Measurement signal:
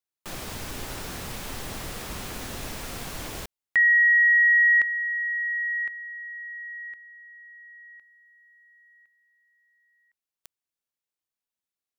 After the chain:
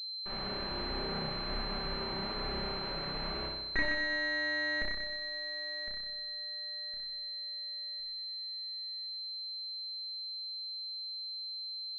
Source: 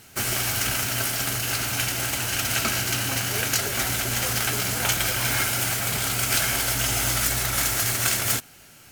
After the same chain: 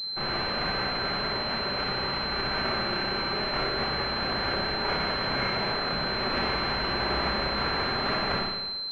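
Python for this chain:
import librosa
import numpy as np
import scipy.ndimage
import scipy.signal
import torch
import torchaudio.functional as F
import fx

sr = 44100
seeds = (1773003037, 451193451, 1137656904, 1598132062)

y = fx.lower_of_two(x, sr, delay_ms=5.1)
y = fx.room_flutter(y, sr, wall_m=5.3, rt60_s=1.1)
y = fx.pwm(y, sr, carrier_hz=4100.0)
y = y * librosa.db_to_amplitude(-4.5)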